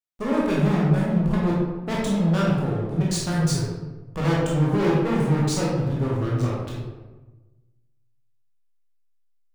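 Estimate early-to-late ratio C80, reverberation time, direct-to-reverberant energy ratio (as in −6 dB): 3.0 dB, 1.2 s, −6.0 dB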